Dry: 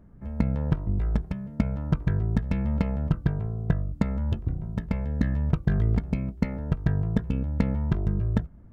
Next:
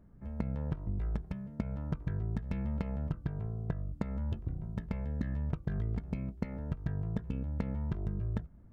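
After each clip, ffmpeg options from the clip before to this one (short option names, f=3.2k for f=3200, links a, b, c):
-af "acompressor=threshold=-23dB:ratio=6,volume=-6.5dB"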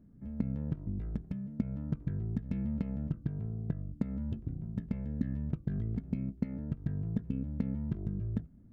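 -af "equalizer=f=125:t=o:w=1:g=5,equalizer=f=250:t=o:w=1:g=11,equalizer=f=1k:t=o:w=1:g=-5,volume=-6dB"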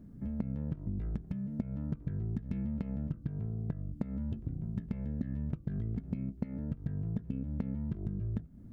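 -af "acompressor=threshold=-42dB:ratio=3,volume=7.5dB"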